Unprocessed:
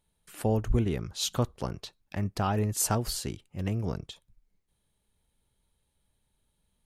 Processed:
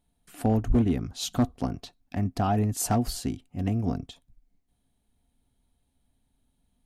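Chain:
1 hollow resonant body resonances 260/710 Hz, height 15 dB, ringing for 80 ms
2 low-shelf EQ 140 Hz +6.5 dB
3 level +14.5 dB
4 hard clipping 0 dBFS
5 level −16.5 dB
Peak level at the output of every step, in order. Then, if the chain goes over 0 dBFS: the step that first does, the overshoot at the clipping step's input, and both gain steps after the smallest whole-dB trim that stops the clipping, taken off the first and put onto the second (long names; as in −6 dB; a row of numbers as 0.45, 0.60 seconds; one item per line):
−10.5, −7.5, +7.0, 0.0, −16.5 dBFS
step 3, 7.0 dB
step 3 +7.5 dB, step 5 −9.5 dB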